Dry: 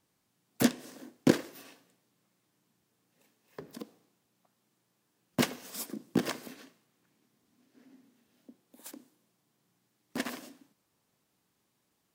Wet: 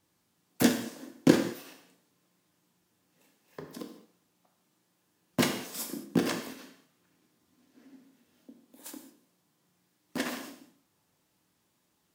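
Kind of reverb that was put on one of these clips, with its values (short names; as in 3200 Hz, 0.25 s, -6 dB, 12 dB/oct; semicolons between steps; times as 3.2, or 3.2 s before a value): non-linear reverb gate 0.24 s falling, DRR 3 dB; gain +1 dB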